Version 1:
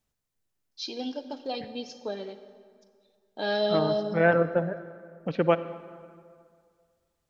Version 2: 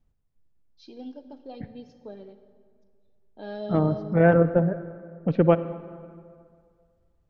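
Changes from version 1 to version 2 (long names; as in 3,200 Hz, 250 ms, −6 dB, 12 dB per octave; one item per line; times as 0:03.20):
first voice −11.5 dB
master: add spectral tilt −3.5 dB per octave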